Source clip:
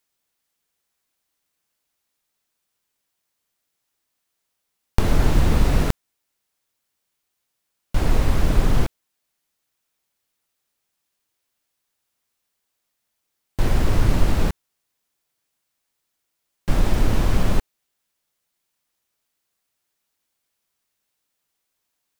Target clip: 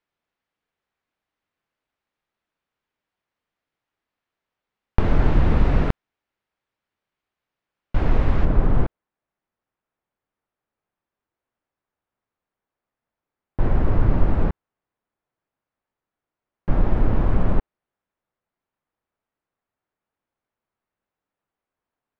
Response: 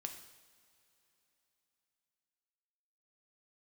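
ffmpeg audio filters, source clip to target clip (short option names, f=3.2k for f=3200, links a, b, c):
-af "asetnsamples=n=441:p=0,asendcmd='8.45 lowpass f 1400',lowpass=2.3k"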